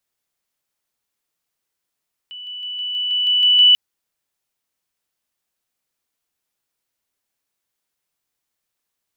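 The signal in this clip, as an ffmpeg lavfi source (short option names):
-f lavfi -i "aevalsrc='pow(10,(-31.5+3*floor(t/0.16))/20)*sin(2*PI*2970*t)':d=1.44:s=44100"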